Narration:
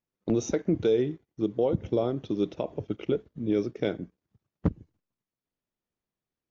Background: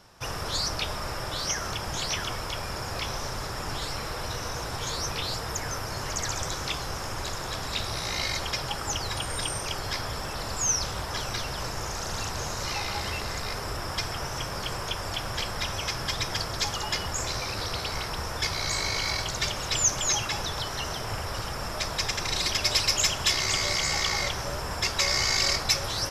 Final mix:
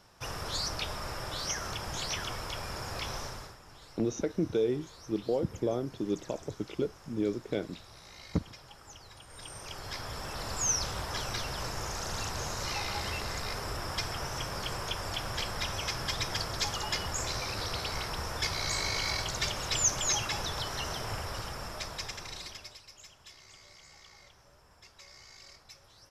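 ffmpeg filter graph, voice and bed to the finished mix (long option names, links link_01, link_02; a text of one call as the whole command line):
ffmpeg -i stem1.wav -i stem2.wav -filter_complex "[0:a]adelay=3700,volume=-4.5dB[link_01];[1:a]volume=12dB,afade=type=out:start_time=3.18:duration=0.4:silence=0.16788,afade=type=in:start_time=9.27:duration=1.31:silence=0.141254,afade=type=out:start_time=21.04:duration=1.74:silence=0.0562341[link_02];[link_01][link_02]amix=inputs=2:normalize=0" out.wav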